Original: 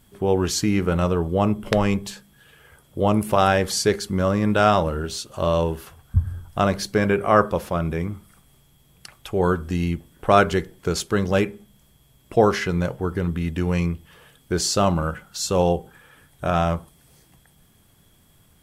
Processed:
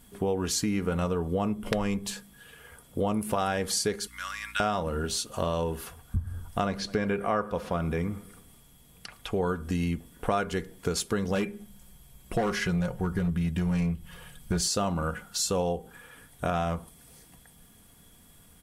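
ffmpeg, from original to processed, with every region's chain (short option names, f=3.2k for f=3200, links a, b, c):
-filter_complex "[0:a]asettb=1/sr,asplit=3[a][b][c];[a]atrim=end=4.074[d];[b]atrim=start=4.07:end=4.6,asetpts=PTS-STARTPTS,afade=t=in:d=0.004:c=qsin,afade=t=out:st=0.526:d=0.004:c=qsin,highpass=f=1.5k:w=0.5412,highpass=f=1.5k:w=1.3066,aeval=exprs='val(0)+0.00251*(sin(2*PI*60*n/s)+sin(2*PI*2*60*n/s)/2+sin(2*PI*3*60*n/s)/3+sin(2*PI*4*60*n/s)/4+sin(2*PI*5*60*n/s)/5)':c=same[e];[c]atrim=start=4.596[f];[d][e]acrossfade=d=0.004:c1=hsin:c2=qsin[g];[g][f]acrossfade=d=0.004:c1=qsin:c2=hsin,asettb=1/sr,asplit=3[h][i][j];[h]atrim=end=6.654[k];[i]atrim=start=6.65:end=9.47,asetpts=PTS-STARTPTS,afade=t=in:d=0.004:c=qsin,afade=t=out:st=2.816:d=0.004:c=qsin,acrossover=split=5800[l][m];[m]acompressor=threshold=-56dB:ratio=4:attack=1:release=60[n];[l][n]amix=inputs=2:normalize=0,asplit=2[o][p];[p]adelay=110,lowpass=f=3.6k:p=1,volume=-22dB,asplit=2[q][r];[r]adelay=110,lowpass=f=3.6k:p=1,volume=0.54,asplit=2[s][t];[t]adelay=110,lowpass=f=3.6k:p=1,volume=0.54,asplit=2[u][v];[v]adelay=110,lowpass=f=3.6k:p=1,volume=0.54[w];[o][q][s][u][w]amix=inputs=5:normalize=0,atrim=end_sample=124362[x];[j]atrim=start=9.466[y];[k][x]acrossfade=d=0.004:c1=hsin:c2=qsin[z];[z][y]acrossfade=d=0.004:c1=qsin:c2=hsin,asettb=1/sr,asplit=3[aa][ab][ac];[aa]atrim=end=11.354[ad];[ab]atrim=start=11.35:end=14.68,asetpts=PTS-STARTPTS,afade=t=in:d=0.004:c=qsin,afade=t=out:st=3.326:d=0.004:c=qsin,asubboost=boost=5:cutoff=150,aecho=1:1:5.5:0.49,atrim=end_sample=146853,volume=14dB,asoftclip=hard,volume=-14dB[ae];[ac]atrim=start=14.676[af];[ad][ae]acrossfade=d=0.004:c1=hsin:c2=qsin[ag];[ag][af]acrossfade=d=0.004:c1=qsin:c2=hsin,equalizer=f=9.7k:w=1.5:g=5,aecho=1:1:4.2:0.35,acompressor=threshold=-26dB:ratio=4"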